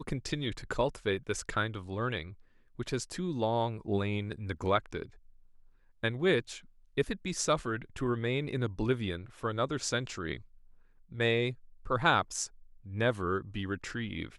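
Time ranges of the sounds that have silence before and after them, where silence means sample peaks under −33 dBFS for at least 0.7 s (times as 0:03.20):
0:06.04–0:10.36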